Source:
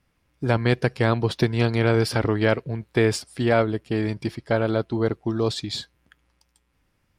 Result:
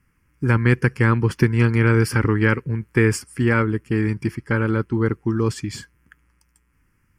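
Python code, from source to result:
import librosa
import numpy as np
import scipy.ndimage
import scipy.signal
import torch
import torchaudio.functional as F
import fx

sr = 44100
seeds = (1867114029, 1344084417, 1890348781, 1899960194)

y = fx.fixed_phaser(x, sr, hz=1600.0, stages=4)
y = y * 10.0 ** (6.0 / 20.0)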